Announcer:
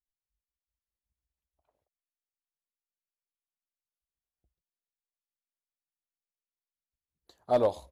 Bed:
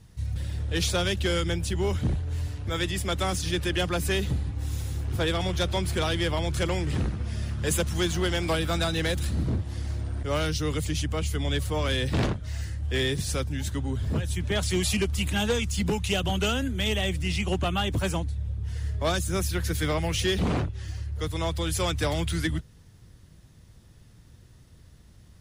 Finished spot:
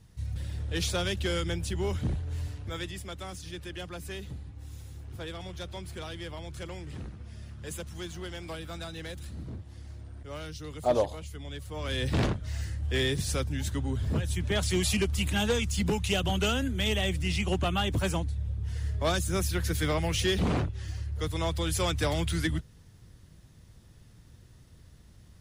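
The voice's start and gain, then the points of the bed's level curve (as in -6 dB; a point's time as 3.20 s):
3.35 s, -0.5 dB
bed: 2.49 s -4 dB
3.17 s -13 dB
11.64 s -13 dB
12.08 s -1.5 dB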